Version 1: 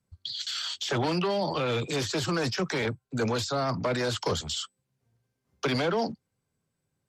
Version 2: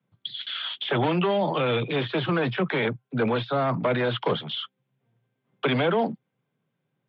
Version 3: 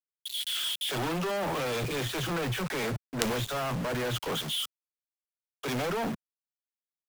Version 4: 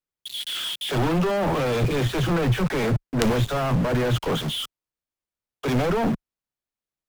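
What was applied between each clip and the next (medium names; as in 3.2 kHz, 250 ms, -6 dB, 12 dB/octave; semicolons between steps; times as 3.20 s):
Chebyshev band-pass 120–3500 Hz, order 5; trim +4.5 dB
companded quantiser 2-bit; three bands expanded up and down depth 100%; trim -5 dB
tilt EQ -2 dB/octave; trim +6 dB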